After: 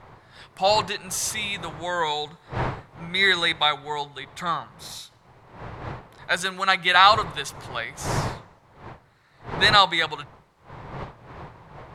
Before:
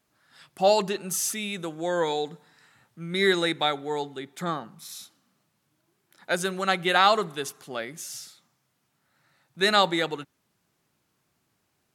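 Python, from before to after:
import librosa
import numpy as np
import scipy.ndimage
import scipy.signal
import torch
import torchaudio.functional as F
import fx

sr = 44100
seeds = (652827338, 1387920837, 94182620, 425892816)

y = fx.dmg_wind(x, sr, seeds[0], corner_hz=450.0, level_db=-35.0)
y = fx.graphic_eq_10(y, sr, hz=(125, 250, 1000, 2000, 4000, 8000), db=(10, -7, 11, 9, 9, 5))
y = y * 10.0 ** (-6.0 / 20.0)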